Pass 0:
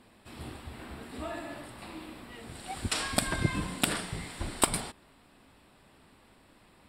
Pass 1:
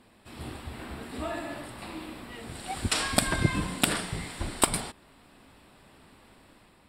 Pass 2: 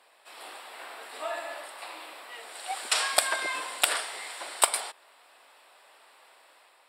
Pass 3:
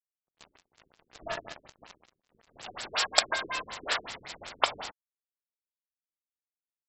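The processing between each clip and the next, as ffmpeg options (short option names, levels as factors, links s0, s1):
-af "dynaudnorm=f=110:g=7:m=1.58"
-af "highpass=f=550:w=0.5412,highpass=f=550:w=1.3066,volume=1.26"
-af "aemphasis=mode=production:type=50fm,acrusher=bits=4:mix=0:aa=0.5,afftfilt=real='re*lt(b*sr/1024,420*pow(8000/420,0.5+0.5*sin(2*PI*5.4*pts/sr)))':imag='im*lt(b*sr/1024,420*pow(8000/420,0.5+0.5*sin(2*PI*5.4*pts/sr)))':win_size=1024:overlap=0.75"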